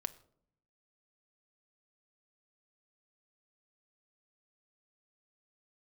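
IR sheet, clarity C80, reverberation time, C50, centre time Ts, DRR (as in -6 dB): 21.0 dB, 0.65 s, 18.0 dB, 3 ms, 10.5 dB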